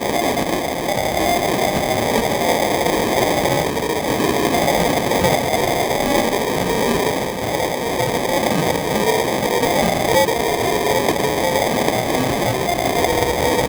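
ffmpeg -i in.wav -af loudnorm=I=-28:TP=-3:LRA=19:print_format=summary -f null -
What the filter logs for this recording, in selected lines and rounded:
Input Integrated:    -18.0 LUFS
Input True Peak:      +0.4 dBTP
Input LRA:             1.0 LU
Input Threshold:     -28.0 LUFS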